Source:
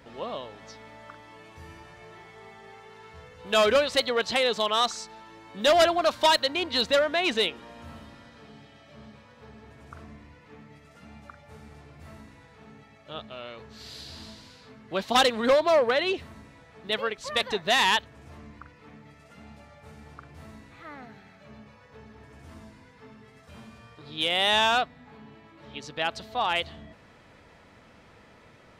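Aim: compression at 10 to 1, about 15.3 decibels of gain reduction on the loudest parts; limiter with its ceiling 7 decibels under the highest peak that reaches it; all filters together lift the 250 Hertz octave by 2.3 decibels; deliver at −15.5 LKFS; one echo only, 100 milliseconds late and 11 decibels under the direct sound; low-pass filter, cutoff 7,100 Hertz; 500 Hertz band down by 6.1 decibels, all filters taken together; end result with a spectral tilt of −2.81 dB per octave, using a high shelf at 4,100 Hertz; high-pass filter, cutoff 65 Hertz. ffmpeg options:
ffmpeg -i in.wav -af "highpass=65,lowpass=7100,equalizer=frequency=250:width_type=o:gain=5.5,equalizer=frequency=500:width_type=o:gain=-9,highshelf=frequency=4100:gain=-5.5,acompressor=threshold=-35dB:ratio=10,alimiter=level_in=7dB:limit=-24dB:level=0:latency=1,volume=-7dB,aecho=1:1:100:0.282,volume=28dB" out.wav

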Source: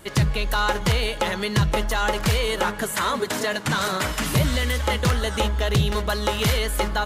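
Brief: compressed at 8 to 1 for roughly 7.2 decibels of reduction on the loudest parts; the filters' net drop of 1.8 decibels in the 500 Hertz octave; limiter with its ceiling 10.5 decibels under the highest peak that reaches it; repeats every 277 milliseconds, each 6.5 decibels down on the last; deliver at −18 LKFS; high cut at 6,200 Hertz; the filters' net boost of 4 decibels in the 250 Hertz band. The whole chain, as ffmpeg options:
ffmpeg -i in.wav -af "lowpass=6200,equalizer=frequency=250:width_type=o:gain=6.5,equalizer=frequency=500:width_type=o:gain=-4,acompressor=threshold=-21dB:ratio=8,alimiter=limit=-23dB:level=0:latency=1,aecho=1:1:277|554|831|1108|1385|1662:0.473|0.222|0.105|0.0491|0.0231|0.0109,volume=12.5dB" out.wav

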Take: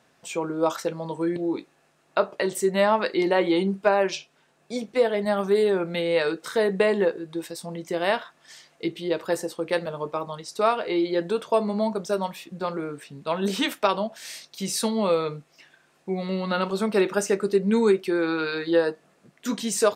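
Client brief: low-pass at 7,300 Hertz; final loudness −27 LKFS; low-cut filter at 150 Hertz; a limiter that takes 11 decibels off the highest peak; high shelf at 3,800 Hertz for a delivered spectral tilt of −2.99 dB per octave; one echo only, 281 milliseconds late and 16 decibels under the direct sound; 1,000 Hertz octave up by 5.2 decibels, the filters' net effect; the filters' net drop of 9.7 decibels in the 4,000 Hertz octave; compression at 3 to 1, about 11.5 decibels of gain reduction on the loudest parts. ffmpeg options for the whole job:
ffmpeg -i in.wav -af "highpass=150,lowpass=7300,equalizer=frequency=1000:width_type=o:gain=7.5,highshelf=frequency=3800:gain=-8,equalizer=frequency=4000:width_type=o:gain=-8,acompressor=threshold=-29dB:ratio=3,alimiter=limit=-22dB:level=0:latency=1,aecho=1:1:281:0.158,volume=6dB" out.wav

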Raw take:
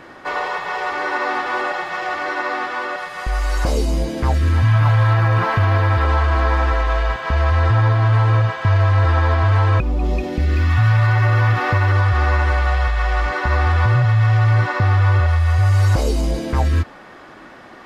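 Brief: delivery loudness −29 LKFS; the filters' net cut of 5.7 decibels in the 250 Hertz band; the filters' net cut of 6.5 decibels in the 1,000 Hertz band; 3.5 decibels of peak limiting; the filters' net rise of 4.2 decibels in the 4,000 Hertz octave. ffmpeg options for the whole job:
ffmpeg -i in.wav -af "equalizer=frequency=250:width_type=o:gain=-9,equalizer=frequency=1000:width_type=o:gain=-8.5,equalizer=frequency=4000:width_type=o:gain=6,volume=-8.5dB,alimiter=limit=-20dB:level=0:latency=1" out.wav

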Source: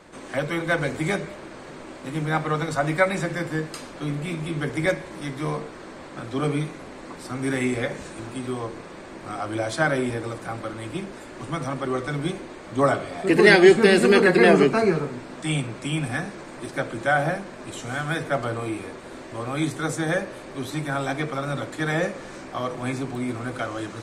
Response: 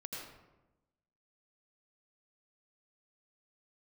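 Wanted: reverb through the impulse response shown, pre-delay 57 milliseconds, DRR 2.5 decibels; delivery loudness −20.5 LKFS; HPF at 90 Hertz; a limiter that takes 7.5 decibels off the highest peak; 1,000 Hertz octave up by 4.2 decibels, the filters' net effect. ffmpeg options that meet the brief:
-filter_complex "[0:a]highpass=90,equalizer=frequency=1000:width_type=o:gain=6,alimiter=limit=-8dB:level=0:latency=1,asplit=2[link_01][link_02];[1:a]atrim=start_sample=2205,adelay=57[link_03];[link_02][link_03]afir=irnorm=-1:irlink=0,volume=-1.5dB[link_04];[link_01][link_04]amix=inputs=2:normalize=0,volume=1.5dB"

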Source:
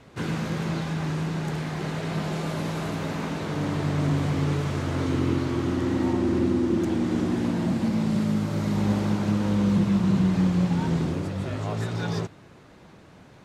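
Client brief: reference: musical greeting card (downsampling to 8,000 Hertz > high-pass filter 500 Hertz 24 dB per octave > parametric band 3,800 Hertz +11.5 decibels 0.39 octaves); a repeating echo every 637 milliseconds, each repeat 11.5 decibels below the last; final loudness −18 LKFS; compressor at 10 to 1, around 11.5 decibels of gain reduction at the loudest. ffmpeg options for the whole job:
ffmpeg -i in.wav -af "acompressor=threshold=-30dB:ratio=10,aecho=1:1:637|1274|1911:0.266|0.0718|0.0194,aresample=8000,aresample=44100,highpass=frequency=500:width=0.5412,highpass=frequency=500:width=1.3066,equalizer=frequency=3800:width_type=o:width=0.39:gain=11.5,volume=24dB" out.wav

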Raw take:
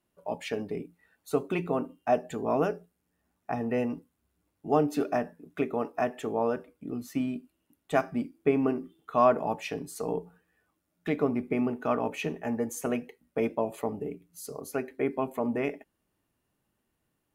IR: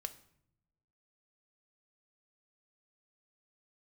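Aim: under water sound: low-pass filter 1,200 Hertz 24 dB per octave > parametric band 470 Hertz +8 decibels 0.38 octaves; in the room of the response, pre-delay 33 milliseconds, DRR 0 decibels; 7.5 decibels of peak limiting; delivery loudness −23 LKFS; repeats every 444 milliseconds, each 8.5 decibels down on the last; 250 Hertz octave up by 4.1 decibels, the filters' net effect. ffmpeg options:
-filter_complex "[0:a]equalizer=frequency=250:width_type=o:gain=4,alimiter=limit=-16.5dB:level=0:latency=1,aecho=1:1:444|888|1332|1776:0.376|0.143|0.0543|0.0206,asplit=2[link_01][link_02];[1:a]atrim=start_sample=2205,adelay=33[link_03];[link_02][link_03]afir=irnorm=-1:irlink=0,volume=2.5dB[link_04];[link_01][link_04]amix=inputs=2:normalize=0,lowpass=frequency=1200:width=0.5412,lowpass=frequency=1200:width=1.3066,equalizer=frequency=470:width_type=o:width=0.38:gain=8,volume=1dB"

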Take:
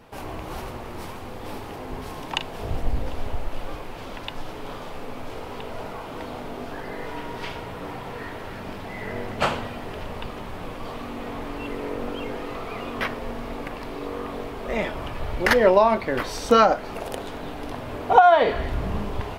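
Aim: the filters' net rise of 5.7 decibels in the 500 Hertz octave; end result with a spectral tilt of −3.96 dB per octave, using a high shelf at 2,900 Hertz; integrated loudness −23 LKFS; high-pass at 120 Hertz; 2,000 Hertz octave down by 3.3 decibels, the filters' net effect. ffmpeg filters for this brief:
ffmpeg -i in.wav -af "highpass=120,equalizer=frequency=500:width_type=o:gain=7.5,equalizer=frequency=2000:width_type=o:gain=-3.5,highshelf=frequency=2900:gain=-4,volume=-1dB" out.wav

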